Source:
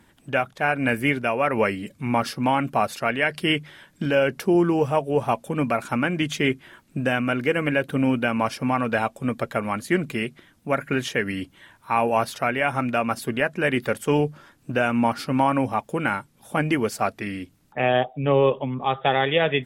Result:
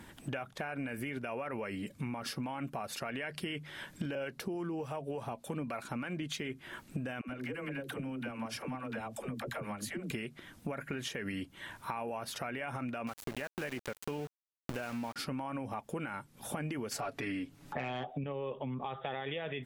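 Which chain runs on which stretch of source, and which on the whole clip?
0:04.15–0:06.40: parametric band 4,100 Hz +5 dB 0.34 octaves + two-band tremolo in antiphase 3.4 Hz, depth 50%, crossover 630 Hz
0:07.21–0:10.11: downward compressor 12 to 1, threshold −33 dBFS + all-pass dispersion lows, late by 82 ms, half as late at 370 Hz
0:13.07–0:15.16: centre clipping without the shift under −27.5 dBFS + downward compressor 2.5 to 1, threshold −29 dBFS
0:16.91–0:18.24: low-shelf EQ 480 Hz +9.5 dB + comb filter 7.1 ms, depth 64% + mid-hump overdrive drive 12 dB, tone 5,400 Hz, clips at −4 dBFS
whole clip: brickwall limiter −18.5 dBFS; downward compressor 6 to 1, threshold −41 dBFS; level +4.5 dB

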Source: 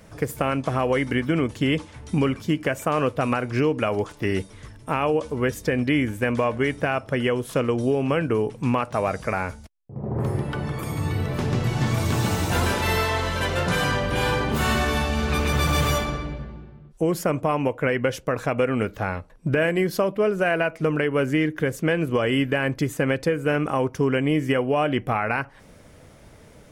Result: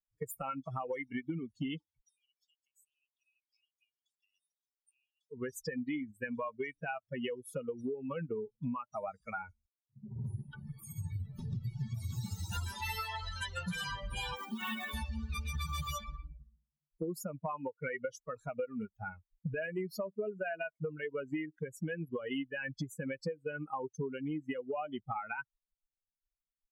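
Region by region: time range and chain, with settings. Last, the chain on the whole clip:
0:02.00–0:05.31: Chebyshev high-pass filter 2,800 Hz, order 3 + downward compressor 2.5 to 1, threshold −45 dBFS
0:14.36–0:14.93: Chebyshev band-pass filter 170–3,700 Hz, order 5 + log-companded quantiser 4 bits
whole clip: spectral dynamics exaggerated over time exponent 3; downward compressor 6 to 1, threshold −37 dBFS; level +2 dB

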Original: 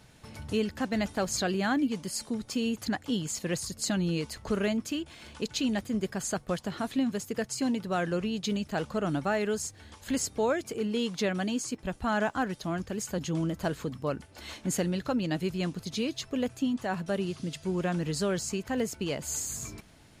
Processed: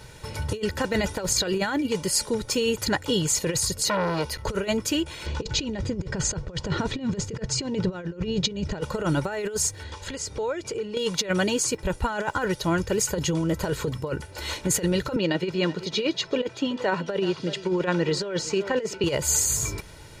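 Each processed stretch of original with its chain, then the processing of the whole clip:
0:03.84–0:04.45: parametric band 7,600 Hz −12 dB 0.28 octaves + saturating transformer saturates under 1,200 Hz
0:05.26–0:08.81: low-pass filter 6,700 Hz 24 dB per octave + low-shelf EQ 420 Hz +10 dB
0:09.83–0:10.97: low-pass filter 6,500 Hz + downward compressor 4 to 1, threshold −40 dBFS
0:15.16–0:19.04: three-way crossover with the lows and the highs turned down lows −21 dB, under 160 Hz, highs −24 dB, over 5,600 Hz + single-tap delay 377 ms −19 dB
whole clip: notch filter 3,100 Hz, Q 25; comb filter 2.1 ms, depth 66%; compressor whose output falls as the input rises −31 dBFS, ratio −0.5; level +7 dB

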